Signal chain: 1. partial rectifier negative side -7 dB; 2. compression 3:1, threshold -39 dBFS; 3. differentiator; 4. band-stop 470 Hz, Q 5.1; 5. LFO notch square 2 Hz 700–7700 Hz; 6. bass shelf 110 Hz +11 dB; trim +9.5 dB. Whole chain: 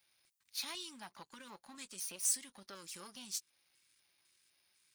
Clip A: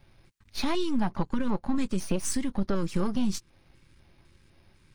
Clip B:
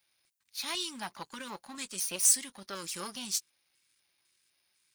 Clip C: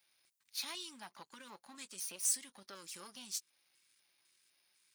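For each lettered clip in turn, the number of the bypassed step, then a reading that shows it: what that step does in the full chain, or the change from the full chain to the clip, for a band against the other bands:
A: 3, 8 kHz band -20.5 dB; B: 2, mean gain reduction 9.5 dB; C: 6, 250 Hz band -2.0 dB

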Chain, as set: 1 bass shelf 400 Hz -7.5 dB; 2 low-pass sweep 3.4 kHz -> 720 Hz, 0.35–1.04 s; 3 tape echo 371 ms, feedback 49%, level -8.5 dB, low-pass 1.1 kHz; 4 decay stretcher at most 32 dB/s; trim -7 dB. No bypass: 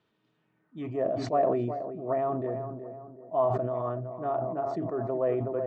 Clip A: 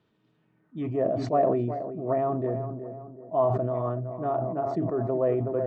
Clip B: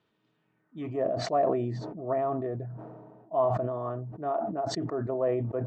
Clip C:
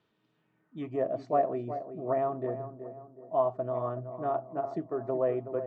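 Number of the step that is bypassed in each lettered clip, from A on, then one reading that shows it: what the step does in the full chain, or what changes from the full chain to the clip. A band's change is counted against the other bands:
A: 1, 125 Hz band +3.0 dB; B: 3, 2 kHz band +2.0 dB; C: 4, crest factor change +2.0 dB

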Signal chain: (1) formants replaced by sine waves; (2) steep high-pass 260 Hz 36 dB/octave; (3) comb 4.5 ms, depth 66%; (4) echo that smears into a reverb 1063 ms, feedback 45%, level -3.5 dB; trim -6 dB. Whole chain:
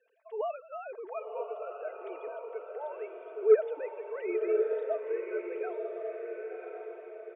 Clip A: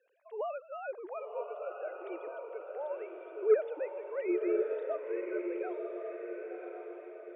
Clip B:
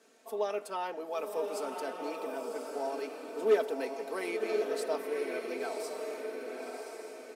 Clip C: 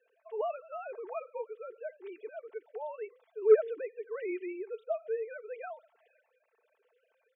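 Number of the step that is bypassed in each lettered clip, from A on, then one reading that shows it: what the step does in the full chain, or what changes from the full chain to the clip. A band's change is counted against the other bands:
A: 3, 250 Hz band +7.0 dB; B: 1, 500 Hz band -5.5 dB; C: 4, echo-to-direct -2.5 dB to none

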